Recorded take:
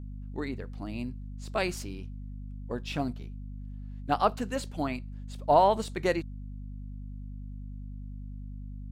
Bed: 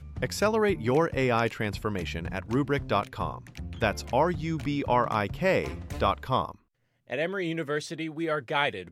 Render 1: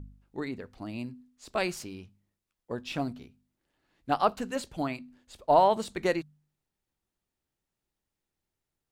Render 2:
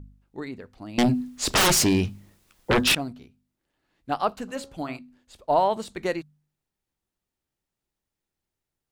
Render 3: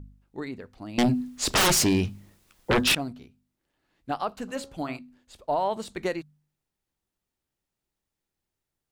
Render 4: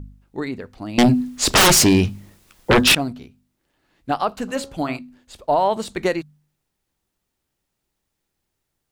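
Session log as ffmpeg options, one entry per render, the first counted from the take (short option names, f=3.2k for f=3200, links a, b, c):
-af "bandreject=f=50:t=h:w=4,bandreject=f=100:t=h:w=4,bandreject=f=150:t=h:w=4,bandreject=f=200:t=h:w=4,bandreject=f=250:t=h:w=4"
-filter_complex "[0:a]asettb=1/sr,asplit=3[a][b][c];[a]atrim=end=0.984[d];[b]atrim=start=0.98:end=2.95,asetpts=PTS-STARTPTS,afade=t=in:d=0.004:c=qsin,afade=t=out:st=1.966:d=0.004:c=qsin,aeval=exprs='0.168*sin(PI/2*10*val(0)/0.168)':c=same[e];[c]atrim=start=2.946[f];[d][e]acrossfade=d=0.004:c1=hsin:c2=qsin[g];[g][f]acrossfade=d=0.004:c1=qsin:c2=hsin,asplit=3[h][i][j];[h]afade=t=out:st=4.47:d=0.02[k];[i]bandreject=f=68.6:t=h:w=4,bandreject=f=137.2:t=h:w=4,bandreject=f=205.8:t=h:w=4,bandreject=f=274.4:t=h:w=4,bandreject=f=343:t=h:w=4,bandreject=f=411.6:t=h:w=4,bandreject=f=480.2:t=h:w=4,bandreject=f=548.8:t=h:w=4,bandreject=f=617.4:t=h:w=4,bandreject=f=686:t=h:w=4,bandreject=f=754.6:t=h:w=4,bandreject=f=823.2:t=h:w=4,bandreject=f=891.8:t=h:w=4,bandreject=f=960.4:t=h:w=4,bandreject=f=1.029k:t=h:w=4,bandreject=f=1.0976k:t=h:w=4,bandreject=f=1.1662k:t=h:w=4,bandreject=f=1.2348k:t=h:w=4,bandreject=f=1.3034k:t=h:w=4,bandreject=f=1.372k:t=h:w=4,bandreject=f=1.4406k:t=h:w=4,bandreject=f=1.5092k:t=h:w=4,afade=t=in:st=4.47:d=0.02,afade=t=out:st=4.97:d=0.02[l];[j]afade=t=in:st=4.97:d=0.02[m];[k][l][m]amix=inputs=3:normalize=0"
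-af "alimiter=limit=-17dB:level=0:latency=1:release=190"
-af "volume=8dB"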